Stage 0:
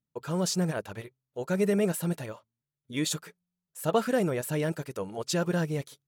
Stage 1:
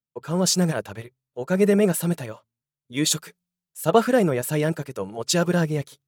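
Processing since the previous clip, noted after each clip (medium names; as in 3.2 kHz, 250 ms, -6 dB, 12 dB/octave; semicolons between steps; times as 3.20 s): three bands expanded up and down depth 40%; trim +6.5 dB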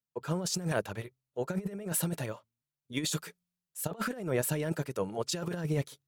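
compressor with a negative ratio -24 dBFS, ratio -0.5; trim -7 dB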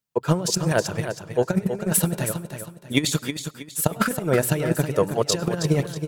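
transient shaper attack +8 dB, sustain -1 dB; feedback delay 320 ms, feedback 33%, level -8.5 dB; on a send at -22 dB: reverberation RT60 0.40 s, pre-delay 94 ms; on the sum: trim +7 dB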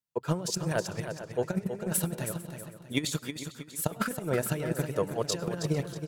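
echo from a far wall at 77 m, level -13 dB; trim -8.5 dB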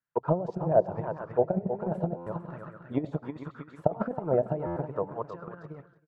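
fade out at the end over 2.00 s; buffer glitch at 2.16/4.66 s, samples 512, times 8; touch-sensitive low-pass 680–1600 Hz down, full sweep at -26.5 dBFS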